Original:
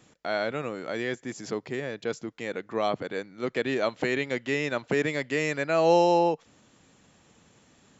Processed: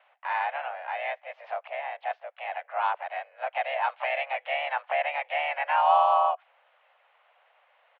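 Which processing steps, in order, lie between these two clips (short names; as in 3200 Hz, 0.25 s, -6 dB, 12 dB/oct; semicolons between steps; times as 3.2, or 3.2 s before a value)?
harmoniser -3 st -6 dB, +3 st -10 dB; mistuned SSB +270 Hz 350–2700 Hz; gain -1 dB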